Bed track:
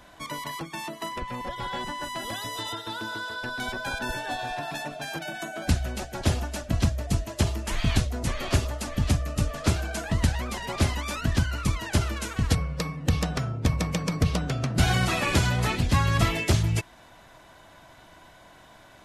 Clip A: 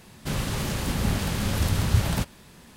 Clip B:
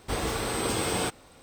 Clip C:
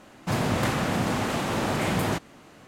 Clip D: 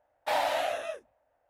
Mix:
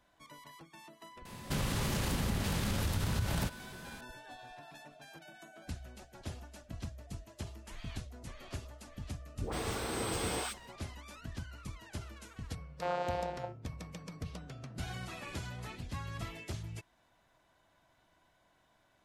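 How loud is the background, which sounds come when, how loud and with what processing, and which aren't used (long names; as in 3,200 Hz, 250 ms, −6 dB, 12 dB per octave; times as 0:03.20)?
bed track −19 dB
0:01.25: mix in A + downward compressor, threshold −29 dBFS
0:09.29: mix in B −7.5 dB + all-pass dispersion highs, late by 146 ms, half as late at 580 Hz
0:12.54: mix in D −5.5 dB + channel vocoder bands 8, saw 177 Hz
not used: C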